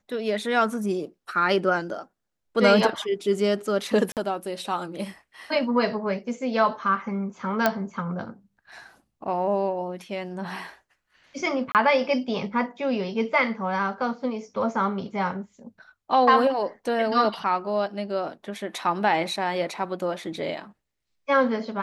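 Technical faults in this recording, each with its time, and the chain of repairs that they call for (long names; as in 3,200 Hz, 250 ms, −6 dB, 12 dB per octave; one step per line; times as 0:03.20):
0:04.12–0:04.17: drop-out 48 ms
0:07.66: click −6 dBFS
0:11.72–0:11.75: drop-out 28 ms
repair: click removal
repair the gap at 0:04.12, 48 ms
repair the gap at 0:11.72, 28 ms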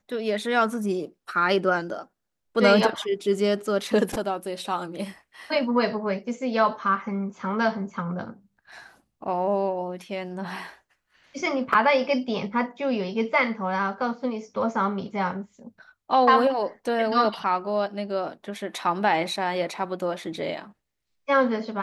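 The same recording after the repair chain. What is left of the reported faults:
none of them is left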